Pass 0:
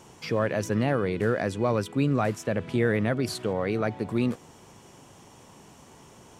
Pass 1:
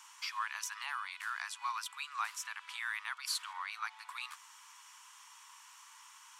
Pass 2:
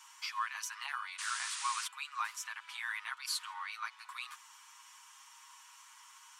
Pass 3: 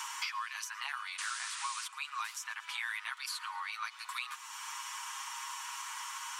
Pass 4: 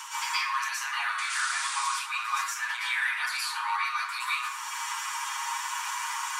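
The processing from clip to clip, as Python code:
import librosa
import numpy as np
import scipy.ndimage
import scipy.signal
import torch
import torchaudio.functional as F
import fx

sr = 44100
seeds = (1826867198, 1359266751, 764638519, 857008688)

y1 = scipy.signal.sosfilt(scipy.signal.butter(12, 950.0, 'highpass', fs=sr, output='sos'), x)
y1 = fx.dynamic_eq(y1, sr, hz=1800.0, q=1.2, threshold_db=-45.0, ratio=4.0, max_db=-6)
y2 = y1 + 0.78 * np.pad(y1, (int(7.4 * sr / 1000.0), 0))[:len(y1)]
y2 = fx.spec_paint(y2, sr, seeds[0], shape='noise', start_s=1.18, length_s=0.7, low_hz=930.0, high_hz=9900.0, level_db=-39.0)
y2 = y2 * librosa.db_to_amplitude(-2.5)
y3 = fx.echo_feedback(y2, sr, ms=113, feedback_pct=50, wet_db=-22.0)
y3 = fx.band_squash(y3, sr, depth_pct=100)
y4 = fx.rev_plate(y3, sr, seeds[1], rt60_s=0.83, hf_ratio=0.5, predelay_ms=105, drr_db=-9.5)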